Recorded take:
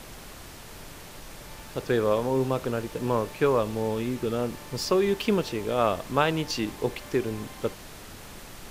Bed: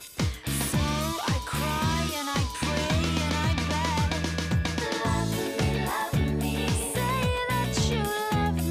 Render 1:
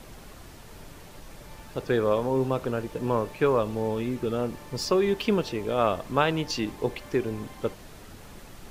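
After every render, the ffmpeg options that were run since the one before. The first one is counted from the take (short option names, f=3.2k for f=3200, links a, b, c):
-af "afftdn=nr=6:nf=-44"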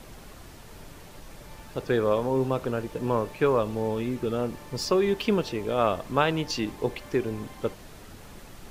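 -af anull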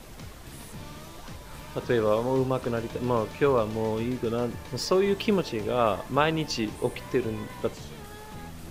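-filter_complex "[1:a]volume=-17.5dB[a];[0:a][a]amix=inputs=2:normalize=0"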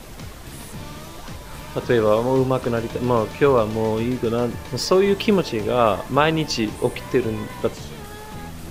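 -af "volume=6.5dB,alimiter=limit=-1dB:level=0:latency=1"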